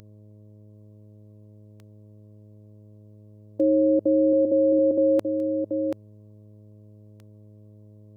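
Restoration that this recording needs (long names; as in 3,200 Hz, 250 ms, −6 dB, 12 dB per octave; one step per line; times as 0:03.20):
click removal
hum removal 105.3 Hz, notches 6
downward expander −41 dBFS, range −21 dB
echo removal 732 ms −6 dB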